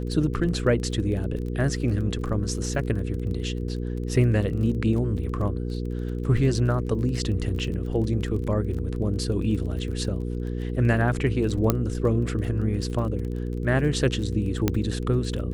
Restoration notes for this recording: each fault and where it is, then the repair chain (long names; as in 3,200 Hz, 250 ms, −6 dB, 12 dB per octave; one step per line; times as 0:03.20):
surface crackle 25 per second −33 dBFS
mains hum 60 Hz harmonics 8 −29 dBFS
0:11.70: click −6 dBFS
0:14.68: click −8 dBFS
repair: click removal
hum removal 60 Hz, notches 8